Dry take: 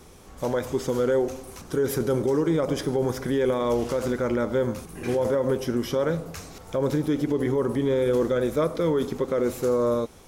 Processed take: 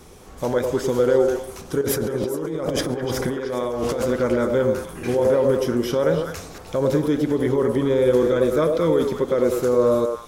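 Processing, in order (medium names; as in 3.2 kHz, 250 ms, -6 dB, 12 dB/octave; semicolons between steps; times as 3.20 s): 1.81–4.08 s: compressor with a negative ratio -29 dBFS, ratio -1; repeats whose band climbs or falls 102 ms, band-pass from 490 Hz, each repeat 1.4 oct, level -1 dB; trim +3 dB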